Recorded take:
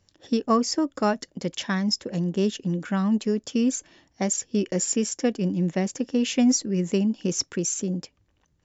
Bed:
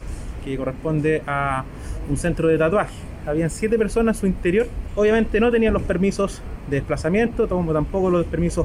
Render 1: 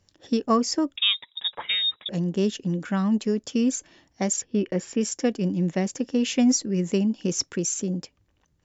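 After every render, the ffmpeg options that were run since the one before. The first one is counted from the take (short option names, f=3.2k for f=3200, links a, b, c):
-filter_complex "[0:a]asettb=1/sr,asplit=3[a][b][c];[a]atrim=end=0.964[d];[b]atrim=start=0.96:end=2.09,asetpts=PTS-STARTPTS,afade=t=in:d=0.004:c=qsin,afade=t=out:st=1.126:d=0.004:c=qsin,lowpass=f=3.3k:t=q:w=0.5098,lowpass=f=3.3k:t=q:w=0.6013,lowpass=f=3.3k:t=q:w=0.9,lowpass=f=3.3k:t=q:w=2.563,afreqshift=-3900[e];[c]atrim=start=2.086[f];[d][e]acrossfade=d=0.004:c1=hsin:c2=qsin[g];[g][f]acrossfade=d=0.004:c1=qsin:c2=hsin,asettb=1/sr,asplit=3[h][i][j];[h]atrim=end=4.424[k];[i]atrim=start=4.42:end=5.01,asetpts=PTS-STARTPTS,afade=t=in:d=0.004:c=qsin,afade=t=out:st=0.586:d=0.004:c=qsin,lowpass=3k[l];[j]atrim=start=5.006[m];[k][l]acrossfade=d=0.004:c1=hsin:c2=qsin[n];[n][m]acrossfade=d=0.004:c1=qsin:c2=hsin"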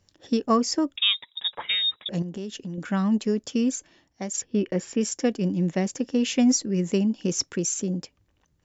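-filter_complex "[0:a]asettb=1/sr,asplit=3[a][b][c];[a]atrim=end=2.224[d];[b]atrim=start=2.22:end=2.78,asetpts=PTS-STARTPTS,afade=t=in:d=0.004:c=qsin,afade=t=out:st=0.556:d=0.004:c=qsin,acompressor=threshold=-31dB:ratio=5:attack=3.2:release=140:knee=1:detection=peak[e];[c]atrim=start=2.776[f];[d][e]acrossfade=d=0.004:c1=hsin:c2=qsin[g];[g][f]acrossfade=d=0.004:c1=qsin:c2=hsin,asplit=2[h][i];[h]atrim=end=4.34,asetpts=PTS-STARTPTS,afade=t=out:st=3.47:d=0.87:silence=0.375837[j];[i]atrim=start=4.34,asetpts=PTS-STARTPTS,afade=t=in:d=0.004:c=hsin:silence=0.375837[k];[j][k]concat=n=2:v=0:a=1"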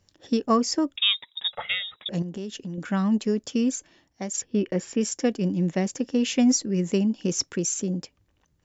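-filter_complex "[0:a]asettb=1/sr,asplit=3[a][b][c];[a]atrim=end=1.504[d];[b]atrim=start=1.5:end=1.94,asetpts=PTS-STARTPTS,afade=t=in:d=0.004:c=qsin,afade=t=out:st=0.436:d=0.004:c=qsin,aecho=1:1:1.5:0.91,atrim=end_sample=19404[e];[c]atrim=start=1.936[f];[d][e]acrossfade=d=0.004:c1=hsin:c2=qsin[g];[g][f]acrossfade=d=0.004:c1=qsin:c2=hsin"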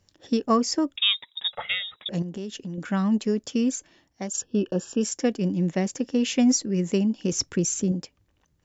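-filter_complex "[0:a]asettb=1/sr,asplit=3[a][b][c];[a]atrim=end=4.274[d];[b]atrim=start=4.27:end=5.04,asetpts=PTS-STARTPTS,afade=t=in:d=0.004:c=qsin,afade=t=out:st=0.766:d=0.004:c=qsin,asuperstop=centerf=2100:order=12:qfactor=2.7[e];[c]atrim=start=5.036[f];[d][e]acrossfade=d=0.004:c1=hsin:c2=qsin[g];[g][f]acrossfade=d=0.004:c1=qsin:c2=hsin,asettb=1/sr,asplit=3[h][i][j];[h]atrim=end=7.324[k];[i]atrim=start=7.32:end=7.92,asetpts=PTS-STARTPTS,afade=t=in:d=0.004:c=qsin,afade=t=out:st=0.596:d=0.004:c=qsin,lowshelf=f=150:g=11.5[l];[j]atrim=start=7.916[m];[k][l]acrossfade=d=0.004:c1=hsin:c2=qsin[n];[n][m]acrossfade=d=0.004:c1=qsin:c2=hsin"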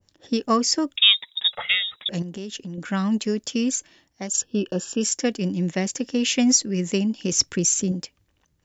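-af "adynamicequalizer=threshold=0.00708:dfrequency=1500:dqfactor=0.7:tfrequency=1500:tqfactor=0.7:attack=5:release=100:ratio=0.375:range=3.5:mode=boostabove:tftype=highshelf"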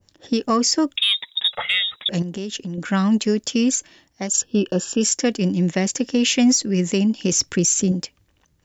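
-af "acontrast=22,alimiter=limit=-9.5dB:level=0:latency=1:release=75"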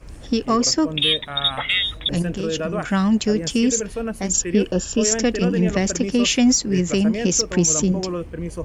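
-filter_complex "[1:a]volume=-8dB[a];[0:a][a]amix=inputs=2:normalize=0"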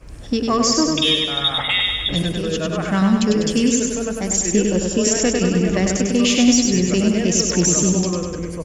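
-af "aecho=1:1:99|198|297|396|495|594|693|792|891:0.631|0.379|0.227|0.136|0.0818|0.0491|0.0294|0.0177|0.0106"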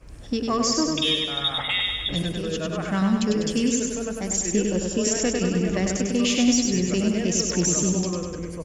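-af "volume=-5.5dB"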